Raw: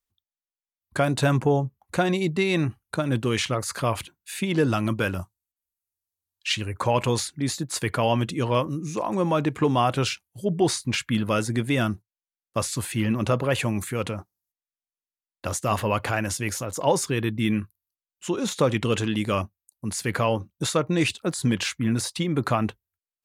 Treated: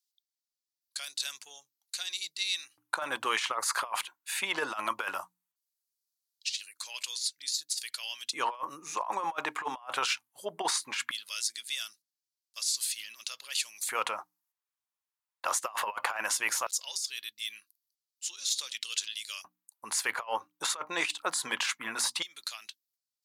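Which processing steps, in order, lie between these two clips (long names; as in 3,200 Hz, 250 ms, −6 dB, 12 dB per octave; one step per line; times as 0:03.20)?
mains-hum notches 60/120/180/240/300 Hz
auto-filter high-pass square 0.18 Hz 960–4,600 Hz
compressor whose output falls as the input rises −28 dBFS, ratio −0.5
level −2.5 dB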